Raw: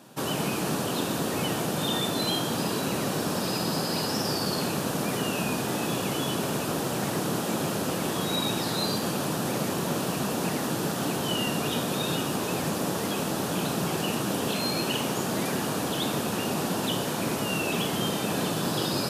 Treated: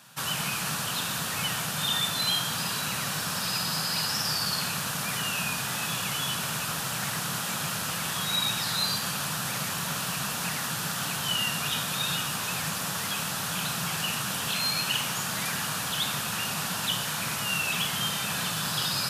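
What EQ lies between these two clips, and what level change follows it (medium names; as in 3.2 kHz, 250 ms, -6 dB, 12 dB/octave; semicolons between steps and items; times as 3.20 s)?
FFT filter 160 Hz 0 dB, 330 Hz -16 dB, 1.4 kHz +7 dB; -3.5 dB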